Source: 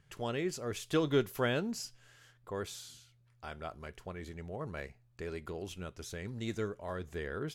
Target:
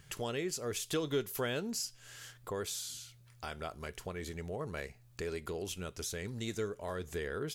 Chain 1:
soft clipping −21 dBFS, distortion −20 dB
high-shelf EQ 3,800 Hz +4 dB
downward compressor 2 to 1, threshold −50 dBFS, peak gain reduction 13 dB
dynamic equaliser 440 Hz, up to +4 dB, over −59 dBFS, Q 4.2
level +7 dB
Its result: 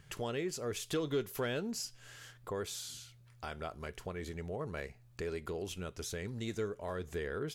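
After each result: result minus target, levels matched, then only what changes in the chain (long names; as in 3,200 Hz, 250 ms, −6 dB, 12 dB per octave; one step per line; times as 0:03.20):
soft clipping: distortion +18 dB; 8,000 Hz band −3.0 dB
change: soft clipping −10.5 dBFS, distortion −38 dB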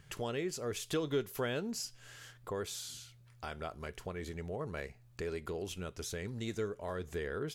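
8,000 Hz band −3.0 dB
change: high-shelf EQ 3,800 Hz +11 dB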